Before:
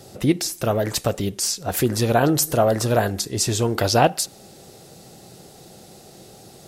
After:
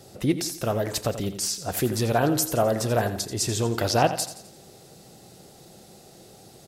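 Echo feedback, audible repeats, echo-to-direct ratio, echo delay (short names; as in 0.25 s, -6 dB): 45%, 4, -11.0 dB, 86 ms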